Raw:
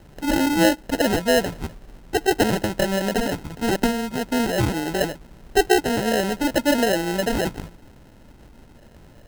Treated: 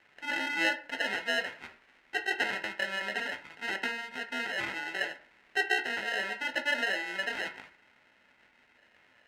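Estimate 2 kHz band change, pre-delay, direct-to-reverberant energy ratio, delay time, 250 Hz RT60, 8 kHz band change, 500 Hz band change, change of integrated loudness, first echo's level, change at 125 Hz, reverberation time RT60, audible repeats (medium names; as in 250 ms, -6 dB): -1.5 dB, 5 ms, 5.0 dB, no echo, 0.40 s, -18.0 dB, -18.0 dB, -10.0 dB, no echo, under -25 dB, 0.45 s, no echo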